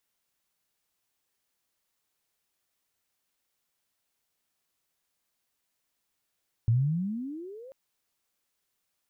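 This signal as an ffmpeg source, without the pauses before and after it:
ffmpeg -f lavfi -i "aevalsrc='pow(10,(-19-25*t/1.04)/20)*sin(2*PI*109*1.04/(28*log(2)/12)*(exp(28*log(2)/12*t/1.04)-1))':duration=1.04:sample_rate=44100" out.wav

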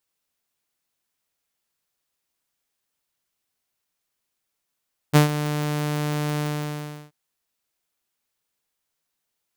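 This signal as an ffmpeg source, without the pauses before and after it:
ffmpeg -f lavfi -i "aevalsrc='0.422*(2*mod(149*t,1)-1)':duration=1.982:sample_rate=44100,afade=type=in:duration=0.028,afade=type=out:start_time=0.028:duration=0.123:silence=0.224,afade=type=out:start_time=1.27:duration=0.712" out.wav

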